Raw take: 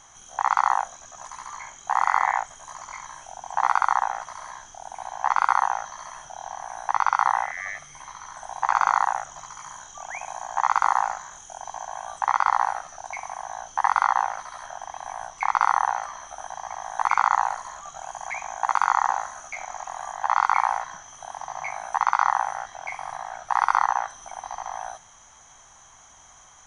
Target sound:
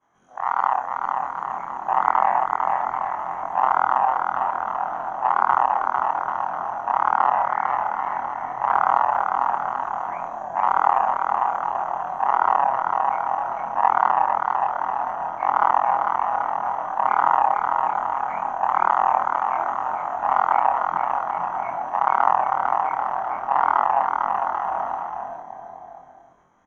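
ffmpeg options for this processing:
-filter_complex "[0:a]afftfilt=real='re':imag='-im':win_size=2048:overlap=0.75,equalizer=f=200:w=0.48:g=10.5,agate=range=-33dB:threshold=-48dB:ratio=3:detection=peak,acrossover=split=600[a][b];[a]dynaudnorm=f=190:g=9:m=12.5dB[c];[c][b]amix=inputs=2:normalize=0,aeval=exprs='0.708*(cos(1*acos(clip(val(0)/0.708,-1,1)))-cos(1*PI/2))+0.0282*(cos(7*acos(clip(val(0)/0.708,-1,1)))-cos(7*PI/2))':c=same,acrossover=split=200 2200:gain=0.2 1 0.0794[d][e][f];[d][e][f]amix=inputs=3:normalize=0,asplit=2[g][h];[h]aecho=0:1:450|787.5|1041|1230|1373:0.631|0.398|0.251|0.158|0.1[i];[g][i]amix=inputs=2:normalize=0,volume=2.5dB"

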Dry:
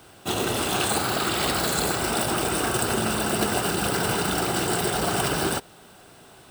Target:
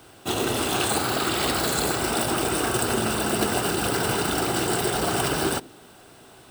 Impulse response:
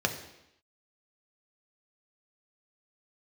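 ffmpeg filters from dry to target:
-filter_complex "[0:a]asplit=2[a][b];[b]bandpass=f=260:t=q:w=2.3:csg=0[c];[1:a]atrim=start_sample=2205[d];[c][d]afir=irnorm=-1:irlink=0,volume=-16.5dB[e];[a][e]amix=inputs=2:normalize=0"

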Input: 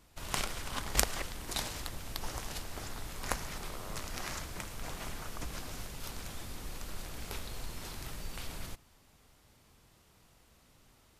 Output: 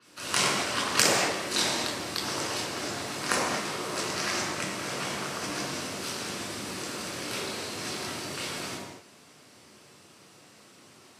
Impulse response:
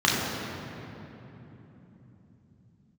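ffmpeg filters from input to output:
-filter_complex "[0:a]highpass=70,bass=f=250:g=-10,treble=f=4k:g=4[a];[1:a]atrim=start_sample=2205,afade=t=out:st=0.44:d=0.01,atrim=end_sample=19845,asetrate=61740,aresample=44100[b];[a][b]afir=irnorm=-1:irlink=0,alimiter=level_in=-3.5dB:limit=-1dB:release=50:level=0:latency=1,adynamicequalizer=threshold=0.0112:dfrequency=6600:dqfactor=0.7:tfrequency=6600:tqfactor=0.7:attack=5:release=100:ratio=0.375:range=2:mode=cutabove:tftype=highshelf"

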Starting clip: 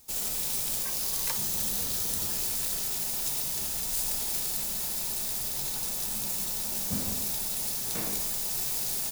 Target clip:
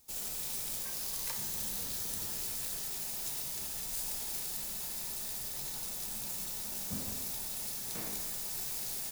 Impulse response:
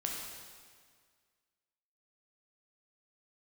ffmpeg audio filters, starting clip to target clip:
-filter_complex "[0:a]asplit=2[a][b];[b]equalizer=f=1.8k:t=o:w=1.7:g=10.5[c];[1:a]atrim=start_sample=2205,asetrate=27342,aresample=44100,adelay=31[d];[c][d]afir=irnorm=-1:irlink=0,volume=-19dB[e];[a][e]amix=inputs=2:normalize=0,volume=-7.5dB"

